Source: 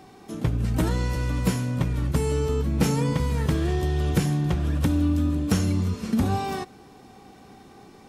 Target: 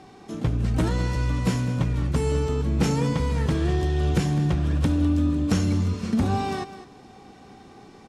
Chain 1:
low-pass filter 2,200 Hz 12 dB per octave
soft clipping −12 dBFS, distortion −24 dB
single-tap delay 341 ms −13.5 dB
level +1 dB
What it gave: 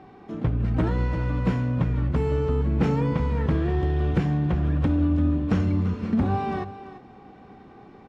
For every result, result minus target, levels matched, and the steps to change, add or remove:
8,000 Hz band −19.0 dB; echo 137 ms late
change: low-pass filter 8,100 Hz 12 dB per octave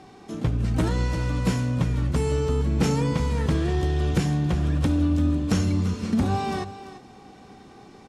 echo 137 ms late
change: single-tap delay 204 ms −13.5 dB

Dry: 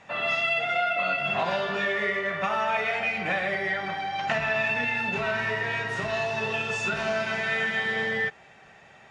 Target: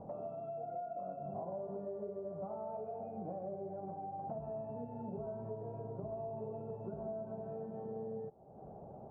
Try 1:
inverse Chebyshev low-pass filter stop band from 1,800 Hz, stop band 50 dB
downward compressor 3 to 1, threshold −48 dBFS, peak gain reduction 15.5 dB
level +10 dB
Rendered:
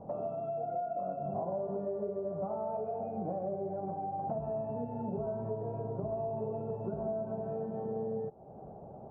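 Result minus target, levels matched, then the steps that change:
downward compressor: peak gain reduction −6.5 dB
change: downward compressor 3 to 1, threshold −58 dBFS, peak gain reduction 22 dB

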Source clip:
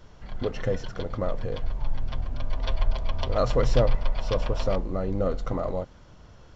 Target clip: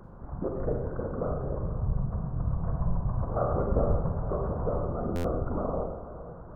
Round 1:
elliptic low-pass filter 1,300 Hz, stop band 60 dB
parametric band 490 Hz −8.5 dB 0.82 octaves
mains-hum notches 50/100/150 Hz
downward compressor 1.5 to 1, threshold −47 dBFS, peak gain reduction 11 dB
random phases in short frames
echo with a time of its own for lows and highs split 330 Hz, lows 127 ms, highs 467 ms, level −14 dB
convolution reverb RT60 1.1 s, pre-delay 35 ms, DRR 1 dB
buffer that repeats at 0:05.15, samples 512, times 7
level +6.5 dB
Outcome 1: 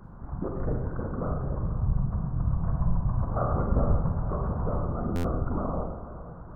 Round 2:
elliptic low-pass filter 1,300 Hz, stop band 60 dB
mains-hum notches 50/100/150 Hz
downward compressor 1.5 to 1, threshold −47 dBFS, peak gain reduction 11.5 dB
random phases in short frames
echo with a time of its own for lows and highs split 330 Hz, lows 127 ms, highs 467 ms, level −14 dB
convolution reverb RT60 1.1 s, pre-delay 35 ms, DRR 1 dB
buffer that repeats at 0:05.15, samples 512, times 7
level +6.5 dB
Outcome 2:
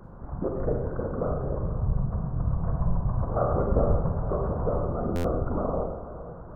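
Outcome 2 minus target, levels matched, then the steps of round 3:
downward compressor: peak gain reduction −2.5 dB
elliptic low-pass filter 1,300 Hz, stop band 60 dB
mains-hum notches 50/100/150 Hz
downward compressor 1.5 to 1, threshold −55 dBFS, peak gain reduction 14 dB
random phases in short frames
echo with a time of its own for lows and highs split 330 Hz, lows 127 ms, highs 467 ms, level −14 dB
convolution reverb RT60 1.1 s, pre-delay 35 ms, DRR 1 dB
buffer that repeats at 0:05.15, samples 512, times 7
level +6.5 dB

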